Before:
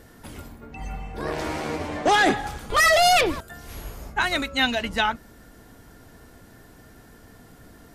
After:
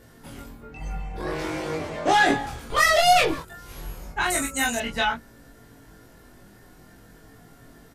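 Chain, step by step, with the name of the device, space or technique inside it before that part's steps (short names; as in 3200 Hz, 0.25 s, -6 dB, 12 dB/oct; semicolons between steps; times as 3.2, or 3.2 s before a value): double-tracked vocal (doubler 25 ms -3 dB; chorus 0.38 Hz, delay 17.5 ms, depth 2.1 ms); 4.3–4.8 resonant high shelf 5600 Hz +14 dB, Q 3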